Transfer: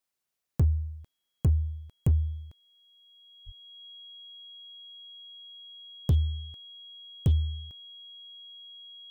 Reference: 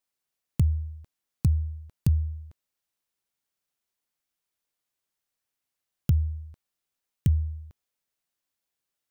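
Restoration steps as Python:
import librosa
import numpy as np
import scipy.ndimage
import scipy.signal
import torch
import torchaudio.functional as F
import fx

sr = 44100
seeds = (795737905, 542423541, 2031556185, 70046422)

y = fx.fix_declip(x, sr, threshold_db=-17.5)
y = fx.notch(y, sr, hz=3300.0, q=30.0)
y = fx.highpass(y, sr, hz=140.0, slope=24, at=(3.45, 3.57), fade=0.02)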